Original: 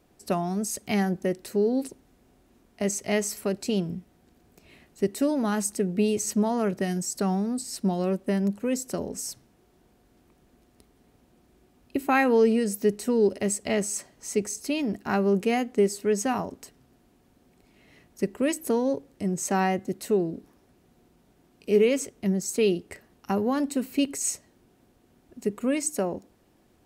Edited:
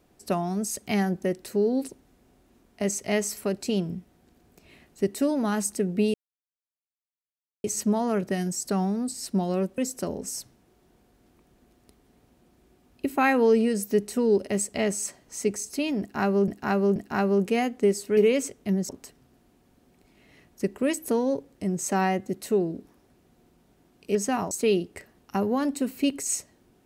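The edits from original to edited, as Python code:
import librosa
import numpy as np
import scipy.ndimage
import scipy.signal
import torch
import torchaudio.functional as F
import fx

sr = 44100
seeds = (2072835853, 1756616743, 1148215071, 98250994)

y = fx.edit(x, sr, fx.insert_silence(at_s=6.14, length_s=1.5),
    fx.cut(start_s=8.28, length_s=0.41),
    fx.repeat(start_s=14.91, length_s=0.48, count=3),
    fx.swap(start_s=16.12, length_s=0.36, other_s=21.74, other_length_s=0.72), tone=tone)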